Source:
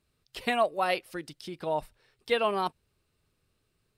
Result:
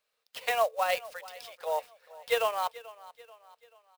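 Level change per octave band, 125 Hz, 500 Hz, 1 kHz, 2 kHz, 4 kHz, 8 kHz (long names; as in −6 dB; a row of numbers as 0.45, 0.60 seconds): below −15 dB, −1.0 dB, −0.5 dB, −0.5 dB, −1.0 dB, +6.5 dB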